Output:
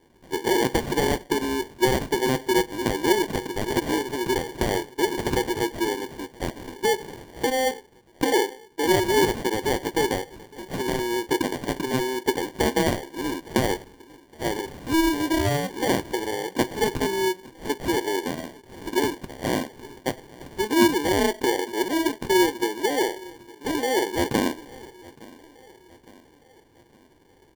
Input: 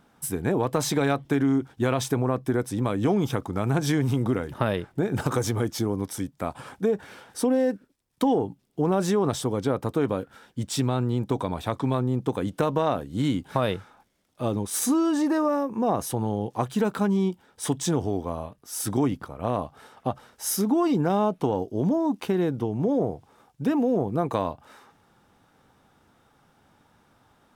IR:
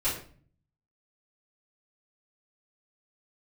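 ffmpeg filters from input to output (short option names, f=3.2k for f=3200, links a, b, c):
-filter_complex "[0:a]deesser=0.5,highpass=f=350:w=0.5412,highpass=f=350:w=1.3066,equalizer=f=360:t=q:w=4:g=10,equalizer=f=700:t=q:w=4:g=-7,equalizer=f=1k:t=q:w=4:g=10,equalizer=f=1.7k:t=q:w=4:g=6,equalizer=f=2.5k:t=q:w=4:g=8,equalizer=f=3.8k:t=q:w=4:g=7,lowpass=f=5.1k:w=0.5412,lowpass=f=5.1k:w=1.3066,aecho=1:1:863|1726|2589|3452:0.0794|0.0405|0.0207|0.0105,asplit=2[a][b];[1:a]atrim=start_sample=2205,asetrate=57330,aresample=44100,lowshelf=f=200:g=-10.5[c];[b][c]afir=irnorm=-1:irlink=0,volume=-19.5dB[d];[a][d]amix=inputs=2:normalize=0,acrusher=samples=34:mix=1:aa=0.000001"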